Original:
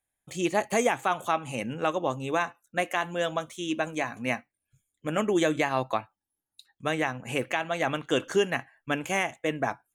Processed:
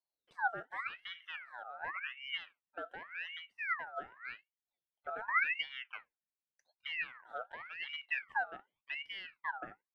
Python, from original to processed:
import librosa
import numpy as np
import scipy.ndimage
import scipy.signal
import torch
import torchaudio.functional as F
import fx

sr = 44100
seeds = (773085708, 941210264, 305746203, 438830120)

y = fx.auto_wah(x, sr, base_hz=330.0, top_hz=1800.0, q=4.6, full_db=-31.5, direction='down')
y = fx.ring_lfo(y, sr, carrier_hz=1800.0, swing_pct=45, hz=0.88)
y = y * librosa.db_to_amplitude(-1.5)